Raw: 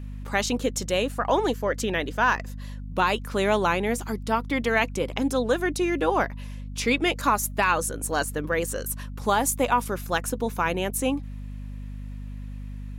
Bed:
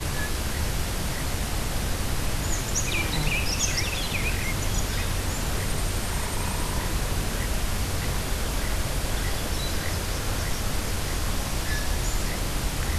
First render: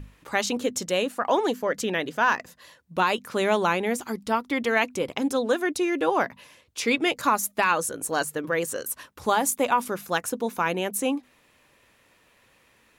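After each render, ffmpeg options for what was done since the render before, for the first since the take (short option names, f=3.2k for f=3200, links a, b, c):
-af "bandreject=f=50:t=h:w=6,bandreject=f=100:t=h:w=6,bandreject=f=150:t=h:w=6,bandreject=f=200:t=h:w=6,bandreject=f=250:t=h:w=6"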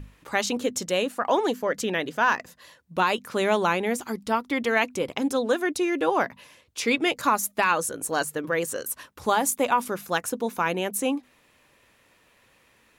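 -af anull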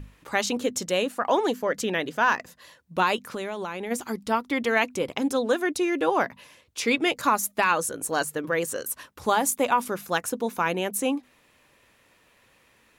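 -filter_complex "[0:a]asplit=3[a][b][c];[a]afade=t=out:st=3.25:d=0.02[d];[b]acompressor=threshold=-28dB:ratio=10:attack=3.2:release=140:knee=1:detection=peak,afade=t=in:st=3.25:d=0.02,afade=t=out:st=3.9:d=0.02[e];[c]afade=t=in:st=3.9:d=0.02[f];[d][e][f]amix=inputs=3:normalize=0"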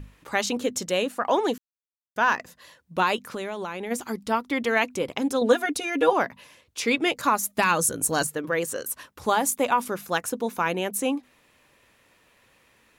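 -filter_complex "[0:a]asettb=1/sr,asplit=3[a][b][c];[a]atrim=end=5.414[d];[b]atrim=start=5.41:end=6.13,asetpts=PTS-STARTPTS,afade=t=in:d=0.004:c=qsin,afade=t=out:st=0.716:d=0.004:c=qsin,aecho=1:1:4.2:0.98,atrim=end_sample=31752[e];[c]atrim=start=6.126[f];[d][e]acrossfade=d=0.004:c1=hsin:c2=qsin[g];[g][f]acrossfade=d=0.004:c1=qsin:c2=hsin,asettb=1/sr,asplit=3[h][i][j];[h]atrim=end=7.574[k];[i]atrim=start=7.57:end=8.27,asetpts=PTS-STARTPTS,afade=t=in:d=0.004:c=qsin,afade=t=out:st=0.696:d=0.004:c=qsin,bass=f=250:g=10,treble=f=4k:g=7[l];[j]atrim=start=8.266[m];[k][l]acrossfade=d=0.004:c1=hsin:c2=qsin[n];[n][m]acrossfade=d=0.004:c1=qsin:c2=hsin,asplit=3[o][p][q];[o]atrim=end=1.58,asetpts=PTS-STARTPTS,afade=t=out:st=1.576:d=0.004:c=hsin[r];[p]atrim=start=1.58:end=2.16,asetpts=PTS-STARTPTS,volume=0[s];[q]atrim=start=2.16,asetpts=PTS-STARTPTS,afade=t=in:d=0.004:c=hsin[t];[r][s][t]concat=n=3:v=0:a=1"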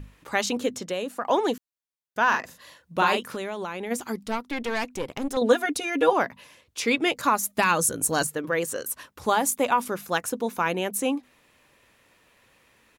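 -filter_complex "[0:a]asettb=1/sr,asplit=3[a][b][c];[a]atrim=end=0.744[d];[b]atrim=start=0.74:end=1.3,asetpts=PTS-STARTPTS,afade=t=in:d=0.004:c=qsin,afade=t=out:st=0.556:d=0.004:c=qsin,acrossover=split=160|1400|4300[e][f][g][h];[e]acompressor=threshold=-54dB:ratio=3[i];[f]acompressor=threshold=-28dB:ratio=3[j];[g]acompressor=threshold=-40dB:ratio=3[k];[h]acompressor=threshold=-43dB:ratio=3[l];[i][j][k][l]amix=inputs=4:normalize=0[m];[c]atrim=start=1.296[n];[d][m]acrossfade=d=0.004:c1=hsin:c2=qsin[o];[o][n]acrossfade=d=0.004:c1=qsin:c2=hsin,asplit=3[p][q][r];[p]afade=t=out:st=2.32:d=0.02[s];[q]asplit=2[t][u];[u]adelay=41,volume=-4dB[v];[t][v]amix=inputs=2:normalize=0,afade=t=in:st=2.32:d=0.02,afade=t=out:st=3.35:d=0.02[w];[r]afade=t=in:st=3.35:d=0.02[x];[s][w][x]amix=inputs=3:normalize=0,asettb=1/sr,asplit=3[y][z][aa];[y]atrim=end=4.274[ab];[z]atrim=start=4.27:end=5.37,asetpts=PTS-STARTPTS,afade=t=in:d=0.004:c=qsin,afade=t=out:st=1.096:d=0.004:c=qsin,aeval=exprs='(tanh(12.6*val(0)+0.65)-tanh(0.65))/12.6':c=same[ac];[aa]atrim=start=5.366[ad];[ab][ac]acrossfade=d=0.004:c1=hsin:c2=qsin[ae];[ae][ad]acrossfade=d=0.004:c1=qsin:c2=hsin"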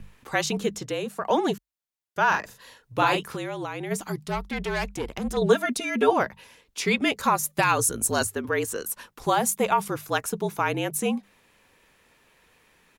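-af "afreqshift=-49"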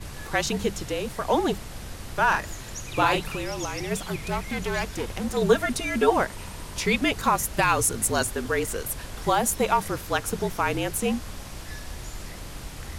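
-filter_complex "[1:a]volume=-10.5dB[a];[0:a][a]amix=inputs=2:normalize=0"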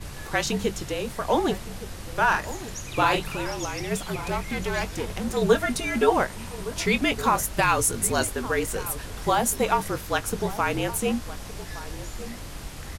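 -filter_complex "[0:a]asplit=2[a][b];[b]adelay=21,volume=-13dB[c];[a][c]amix=inputs=2:normalize=0,asplit=2[d][e];[e]adelay=1166,volume=-14dB,highshelf=f=4k:g=-26.2[f];[d][f]amix=inputs=2:normalize=0"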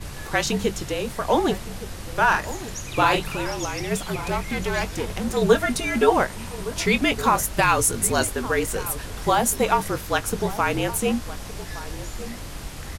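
-af "volume=2.5dB"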